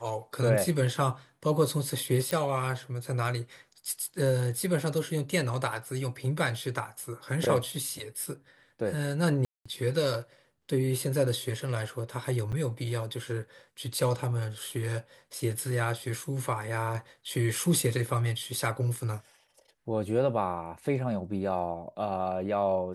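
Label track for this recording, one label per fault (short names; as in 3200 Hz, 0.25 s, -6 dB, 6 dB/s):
2.310000	2.310000	pop -15 dBFS
9.450000	9.650000	gap 0.205 s
12.520000	12.530000	gap 6.8 ms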